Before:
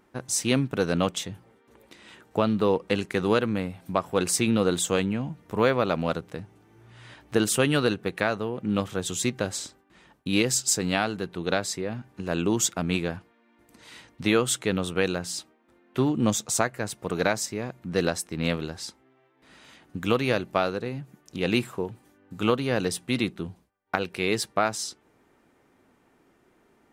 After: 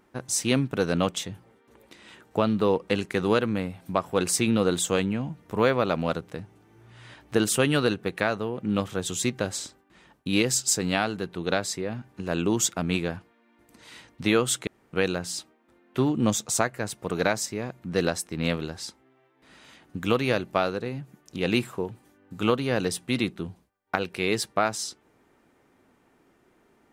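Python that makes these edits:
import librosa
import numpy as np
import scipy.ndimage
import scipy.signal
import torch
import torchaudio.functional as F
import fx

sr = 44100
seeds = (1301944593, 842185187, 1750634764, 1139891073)

y = fx.edit(x, sr, fx.room_tone_fill(start_s=14.67, length_s=0.26), tone=tone)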